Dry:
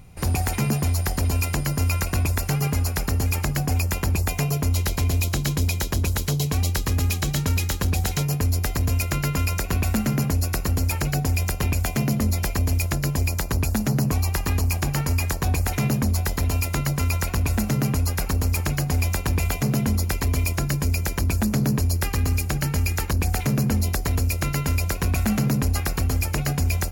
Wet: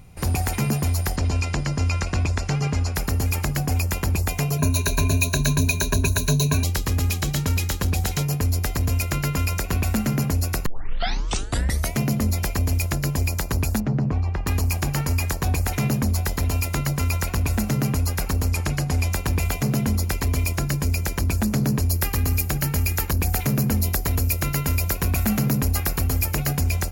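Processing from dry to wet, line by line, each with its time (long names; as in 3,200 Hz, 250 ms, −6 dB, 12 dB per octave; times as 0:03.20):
0:01.16–0:02.95: low-pass filter 7,100 Hz 24 dB per octave
0:04.58–0:06.64: EQ curve with evenly spaced ripples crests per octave 1.5, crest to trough 17 dB
0:10.66: tape start 1.32 s
0:13.80–0:14.47: head-to-tape spacing loss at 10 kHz 33 dB
0:18.49–0:19.13: low-pass filter 11,000 Hz
0:21.89–0:26.61: parametric band 14,000 Hz +11 dB 0.45 octaves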